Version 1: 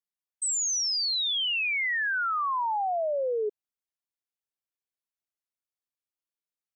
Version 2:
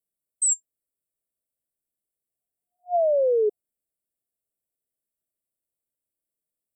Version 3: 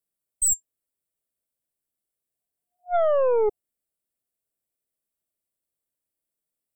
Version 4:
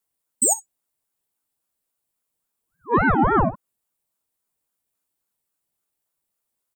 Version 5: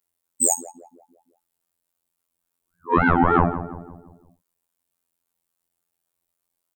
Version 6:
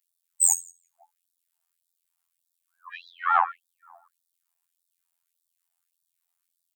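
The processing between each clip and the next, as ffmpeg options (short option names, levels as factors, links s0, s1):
-af "afftfilt=real='re*(1-between(b*sr/4096,720,7400))':imag='im*(1-between(b*sr/4096,720,7400))':win_size=4096:overlap=0.75,volume=2.37"
-af "aeval=exprs='0.168*(cos(1*acos(clip(val(0)/0.168,-1,1)))-cos(1*PI/2))+0.0422*(cos(2*acos(clip(val(0)/0.168,-1,1)))-cos(2*PI/2))+0.00596*(cos(5*acos(clip(val(0)/0.168,-1,1)))-cos(5*PI/2))':c=same"
-af "acompressor=threshold=0.0708:ratio=2.5,aecho=1:1:13|60:0.316|0.141,aeval=exprs='val(0)*sin(2*PI*570*n/s+570*0.6/3.6*sin(2*PI*3.6*n/s))':c=same,volume=2.66"
-filter_complex "[0:a]acontrast=34,asplit=2[s0][s1];[s1]adelay=170,lowpass=f=1100:p=1,volume=0.282,asplit=2[s2][s3];[s3]adelay=170,lowpass=f=1100:p=1,volume=0.51,asplit=2[s4][s5];[s5]adelay=170,lowpass=f=1100:p=1,volume=0.51,asplit=2[s6][s7];[s7]adelay=170,lowpass=f=1100:p=1,volume=0.51,asplit=2[s8][s9];[s9]adelay=170,lowpass=f=1100:p=1,volume=0.51[s10];[s0][s2][s4][s6][s8][s10]amix=inputs=6:normalize=0,afftfilt=real='hypot(re,im)*cos(PI*b)':imag='0':win_size=2048:overlap=0.75,volume=0.841"
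-af "afftfilt=real='re*gte(b*sr/1024,630*pow(3500/630,0.5+0.5*sin(2*PI*1.7*pts/sr)))':imag='im*gte(b*sr/1024,630*pow(3500/630,0.5+0.5*sin(2*PI*1.7*pts/sr)))':win_size=1024:overlap=0.75"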